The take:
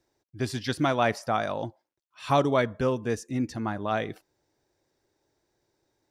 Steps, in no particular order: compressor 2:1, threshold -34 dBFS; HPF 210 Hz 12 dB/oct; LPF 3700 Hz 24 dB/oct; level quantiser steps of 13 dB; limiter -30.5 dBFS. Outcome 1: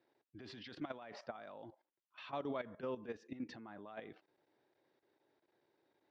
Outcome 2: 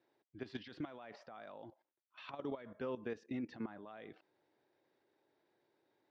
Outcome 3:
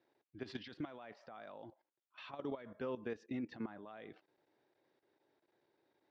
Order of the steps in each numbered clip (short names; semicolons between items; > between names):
LPF > limiter > compressor > HPF > level quantiser; compressor > HPF > limiter > level quantiser > LPF; compressor > HPF > limiter > LPF > level quantiser